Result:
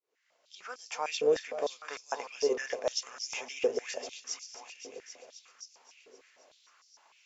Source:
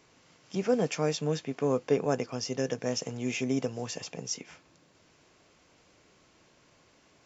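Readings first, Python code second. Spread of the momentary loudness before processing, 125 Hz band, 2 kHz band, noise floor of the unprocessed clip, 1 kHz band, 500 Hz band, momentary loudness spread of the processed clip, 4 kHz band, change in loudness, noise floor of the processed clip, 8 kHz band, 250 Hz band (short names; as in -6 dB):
9 LU, under -25 dB, +0.5 dB, -64 dBFS, -0.5 dB, -1.5 dB, 20 LU, 0.0 dB, -3.0 dB, -72 dBFS, n/a, -15.0 dB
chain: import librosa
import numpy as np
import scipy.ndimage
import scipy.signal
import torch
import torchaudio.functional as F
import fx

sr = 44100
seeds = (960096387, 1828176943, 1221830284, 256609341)

y = fx.fade_in_head(x, sr, length_s=1.09)
y = fx.echo_heads(y, sr, ms=263, heads='all three', feedback_pct=48, wet_db=-14.5)
y = fx.filter_held_highpass(y, sr, hz=6.6, low_hz=430.0, high_hz=5300.0)
y = y * 10.0 ** (-4.0 / 20.0)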